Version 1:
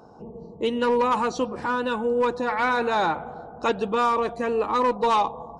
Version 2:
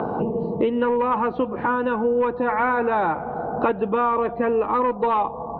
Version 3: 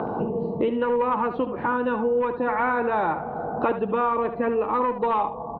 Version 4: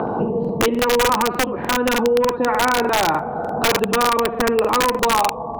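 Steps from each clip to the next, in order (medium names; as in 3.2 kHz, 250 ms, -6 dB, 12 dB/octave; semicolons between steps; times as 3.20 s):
Bessel low-pass 1.7 kHz, order 8; three bands compressed up and down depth 100%; trim +2 dB
delay 73 ms -11 dB; trim -2.5 dB
integer overflow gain 15.5 dB; crackling interface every 0.30 s, samples 2048, repeat, from 0.40 s; trim +5.5 dB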